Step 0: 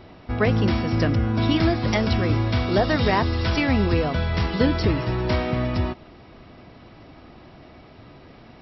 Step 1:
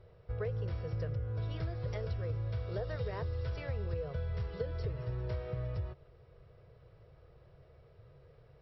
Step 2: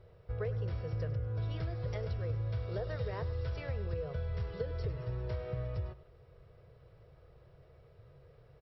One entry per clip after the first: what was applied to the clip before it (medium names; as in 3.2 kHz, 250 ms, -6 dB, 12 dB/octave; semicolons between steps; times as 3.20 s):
FFT filter 140 Hz 0 dB, 260 Hz -29 dB, 470 Hz +3 dB, 760 Hz -14 dB, 1.5 kHz -9 dB, 2.2 kHz -14 dB; compression, threshold -24 dBFS, peak gain reduction 8 dB; trim -8.5 dB
delay 101 ms -15.5 dB